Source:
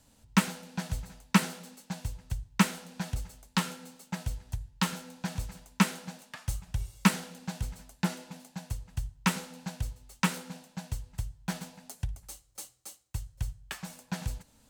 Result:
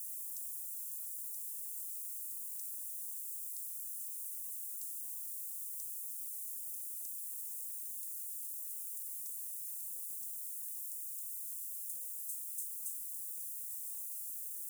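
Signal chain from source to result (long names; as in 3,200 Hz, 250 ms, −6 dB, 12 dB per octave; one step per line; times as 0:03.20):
downward compressor, threshold −40 dBFS, peak gain reduction 22 dB
sample-and-hold tremolo
bit-depth reduction 8 bits, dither triangular
inverse Chebyshev high-pass filter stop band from 2,100 Hz, stop band 70 dB
level +7 dB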